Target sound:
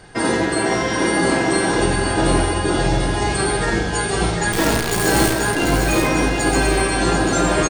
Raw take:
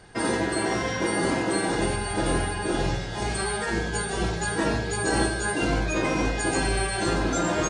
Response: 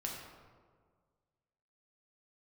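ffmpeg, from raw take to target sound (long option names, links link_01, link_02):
-filter_complex "[0:a]asettb=1/sr,asplit=3[link_01][link_02][link_03];[link_01]atrim=end=4.524[link_04];[link_02]atrim=start=4.52:end=5.33,asetpts=PTS-STARTPTS,afade=type=in:duration=0.004:curve=qsin,afade=type=out:start_time=0.806:duration=0.004:curve=qsin,acrusher=bits=5:dc=4:mix=0:aa=0.000001[link_05];[link_03]atrim=start=5.326[link_06];[link_04][link_05]acrossfade=duration=0.004:curve1=hsin:curve2=qsin[link_07];[link_07][link_06]acrossfade=duration=0.004:curve1=qsin:curve2=hsin,aecho=1:1:741|1482|2223|2964:0.501|0.15|0.0451|0.0135,asplit=2[link_08][link_09];[1:a]atrim=start_sample=2205[link_10];[link_09][link_10]afir=irnorm=-1:irlink=0,volume=-7dB[link_11];[link_08][link_11]amix=inputs=2:normalize=0,volume=4dB"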